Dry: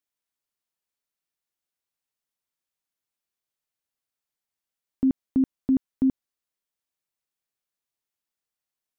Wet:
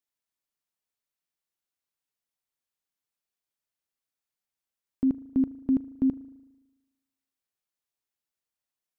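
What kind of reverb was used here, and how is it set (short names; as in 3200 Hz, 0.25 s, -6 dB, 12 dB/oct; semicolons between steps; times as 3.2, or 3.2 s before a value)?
spring tank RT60 1.1 s, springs 37 ms, chirp 25 ms, DRR 16.5 dB; gain -2.5 dB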